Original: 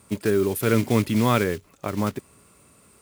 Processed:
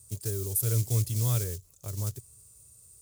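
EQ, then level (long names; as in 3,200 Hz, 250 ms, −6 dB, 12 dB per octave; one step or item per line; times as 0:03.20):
drawn EQ curve 120 Hz 0 dB, 220 Hz −24 dB, 460 Hz −15 dB, 840 Hz −21 dB, 2,200 Hz −22 dB, 6,700 Hz +4 dB
0.0 dB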